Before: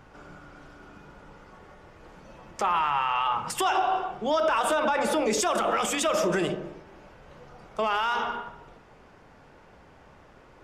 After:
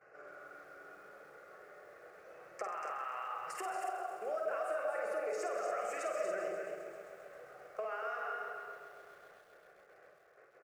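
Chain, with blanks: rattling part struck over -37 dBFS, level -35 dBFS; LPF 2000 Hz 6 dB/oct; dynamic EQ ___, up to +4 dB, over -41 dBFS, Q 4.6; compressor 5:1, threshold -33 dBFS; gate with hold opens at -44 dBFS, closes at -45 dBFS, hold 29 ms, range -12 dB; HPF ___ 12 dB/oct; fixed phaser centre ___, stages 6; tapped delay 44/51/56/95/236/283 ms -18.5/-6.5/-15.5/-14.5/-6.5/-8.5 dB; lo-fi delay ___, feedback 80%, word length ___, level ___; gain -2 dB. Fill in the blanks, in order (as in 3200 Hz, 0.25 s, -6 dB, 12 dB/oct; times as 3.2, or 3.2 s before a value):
710 Hz, 400 Hz, 930 Hz, 0.132 s, 10-bit, -12.5 dB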